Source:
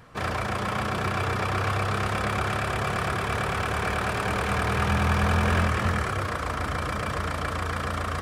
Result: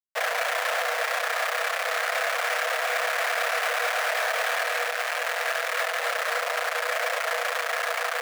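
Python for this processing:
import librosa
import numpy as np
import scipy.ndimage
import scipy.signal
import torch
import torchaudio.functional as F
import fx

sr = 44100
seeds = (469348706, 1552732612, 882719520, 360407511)

y = fx.schmitt(x, sr, flips_db=-36.0)
y = scipy.signal.sosfilt(scipy.signal.cheby1(6, 9, 470.0, 'highpass', fs=sr, output='sos'), y)
y = y * librosa.db_to_amplitude(7.0)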